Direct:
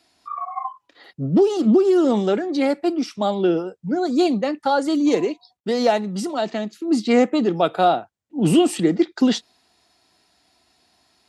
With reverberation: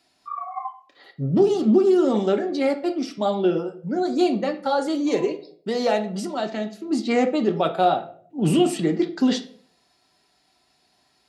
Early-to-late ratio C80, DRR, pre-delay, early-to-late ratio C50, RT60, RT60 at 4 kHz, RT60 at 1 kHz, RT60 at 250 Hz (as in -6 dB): 17.5 dB, 4.5 dB, 5 ms, 13.0 dB, 0.50 s, 0.35 s, 0.45 s, 0.65 s